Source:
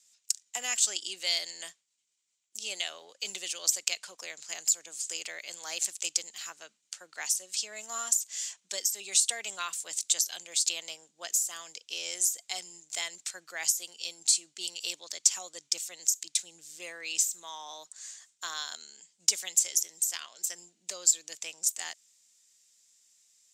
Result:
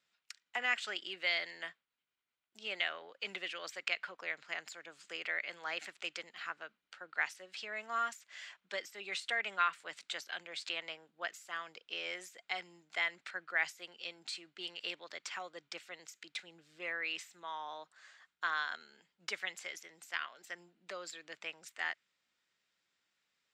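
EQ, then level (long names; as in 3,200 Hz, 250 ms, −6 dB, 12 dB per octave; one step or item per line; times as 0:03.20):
dynamic equaliser 2,000 Hz, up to +7 dB, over −51 dBFS, Q 1.9
high-frequency loss of the air 420 metres
parametric band 1,400 Hz +7 dB 0.61 octaves
+1.5 dB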